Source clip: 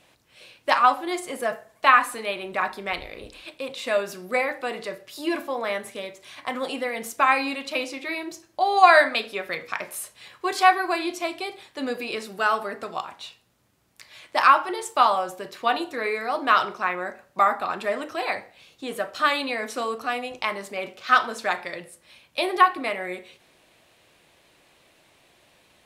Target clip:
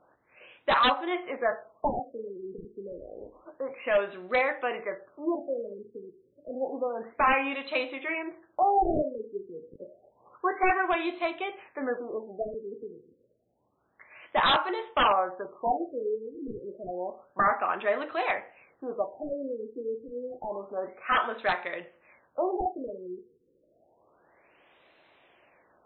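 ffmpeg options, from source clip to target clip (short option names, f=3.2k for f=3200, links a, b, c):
-af "bass=f=250:g=-11,treble=f=4k:g=-13,aeval=exprs='0.158*(abs(mod(val(0)/0.158+3,4)-2)-1)':c=same,afftfilt=real='re*lt(b*sr/1024,480*pow(4200/480,0.5+0.5*sin(2*PI*0.29*pts/sr)))':imag='im*lt(b*sr/1024,480*pow(4200/480,0.5+0.5*sin(2*PI*0.29*pts/sr)))':win_size=1024:overlap=0.75"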